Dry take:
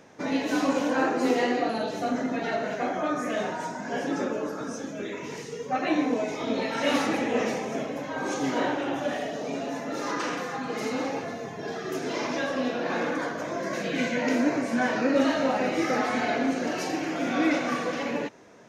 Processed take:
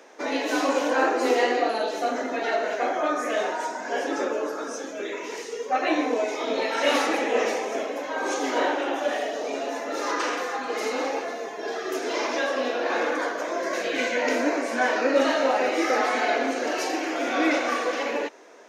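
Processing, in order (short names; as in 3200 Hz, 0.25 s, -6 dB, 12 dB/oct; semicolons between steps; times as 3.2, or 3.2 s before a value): HPF 330 Hz 24 dB/oct; gain +4 dB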